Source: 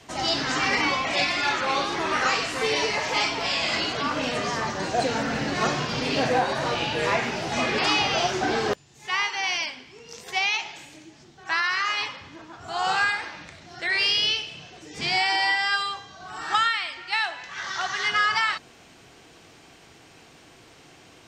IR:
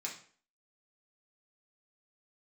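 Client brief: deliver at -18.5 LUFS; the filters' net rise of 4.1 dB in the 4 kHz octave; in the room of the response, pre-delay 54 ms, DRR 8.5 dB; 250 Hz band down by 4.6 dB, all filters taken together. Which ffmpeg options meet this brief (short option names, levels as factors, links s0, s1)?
-filter_complex "[0:a]equalizer=f=250:t=o:g=-6,equalizer=f=4000:t=o:g=5.5,asplit=2[s0][s1];[1:a]atrim=start_sample=2205,adelay=54[s2];[s1][s2]afir=irnorm=-1:irlink=0,volume=0.376[s3];[s0][s3]amix=inputs=2:normalize=0,volume=1.5"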